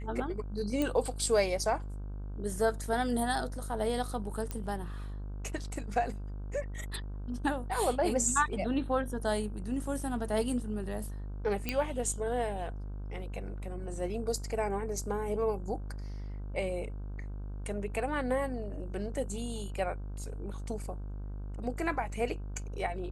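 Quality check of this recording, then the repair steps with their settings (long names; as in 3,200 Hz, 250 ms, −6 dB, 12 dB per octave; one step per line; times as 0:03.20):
mains buzz 50 Hz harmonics 32 −39 dBFS
0:00.82: click −18 dBFS
0:04.51: click −21 dBFS
0:11.69: click −16 dBFS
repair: click removal
hum removal 50 Hz, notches 32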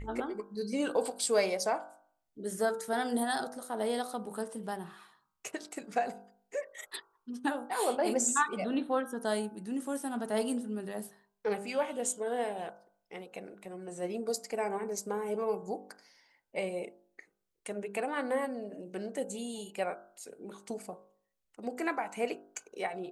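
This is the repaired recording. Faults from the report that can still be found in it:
0:11.69: click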